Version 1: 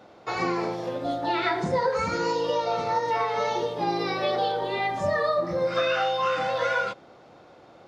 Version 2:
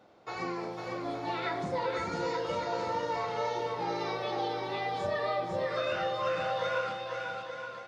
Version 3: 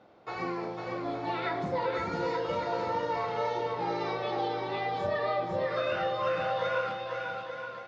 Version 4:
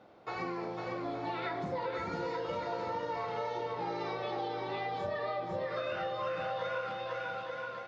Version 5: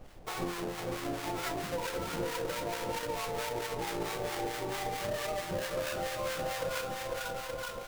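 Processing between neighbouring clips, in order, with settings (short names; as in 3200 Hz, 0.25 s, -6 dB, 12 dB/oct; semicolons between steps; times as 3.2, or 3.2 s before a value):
bouncing-ball echo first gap 0.5 s, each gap 0.75×, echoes 5; gain -9 dB
air absorption 120 m; gain +2 dB
compressor 2.5:1, threshold -35 dBFS, peak gain reduction 7 dB
half-waves squared off; added noise brown -47 dBFS; harmonic tremolo 4.5 Hz, depth 70%, crossover 880 Hz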